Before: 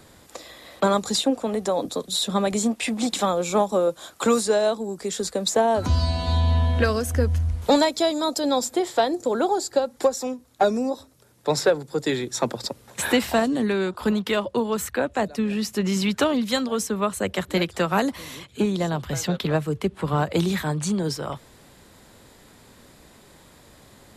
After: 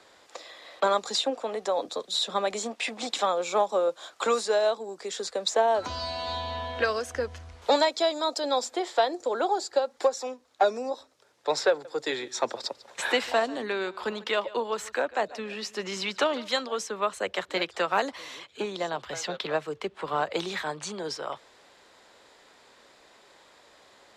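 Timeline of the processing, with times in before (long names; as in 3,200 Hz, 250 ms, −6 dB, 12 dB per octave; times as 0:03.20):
0:11.70–0:16.48: single-tap delay 146 ms −19.5 dB
whole clip: three-way crossover with the lows and the highs turned down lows −21 dB, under 390 Hz, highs −21 dB, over 7,000 Hz; level −1.5 dB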